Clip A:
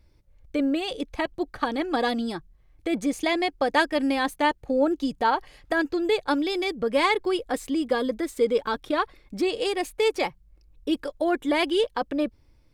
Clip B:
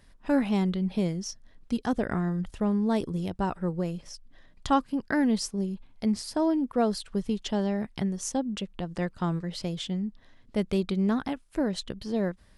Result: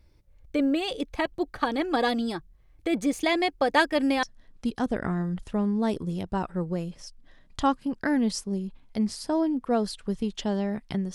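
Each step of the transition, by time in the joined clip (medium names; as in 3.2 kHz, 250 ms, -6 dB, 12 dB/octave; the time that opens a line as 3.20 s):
clip A
4.23 s: go over to clip B from 1.30 s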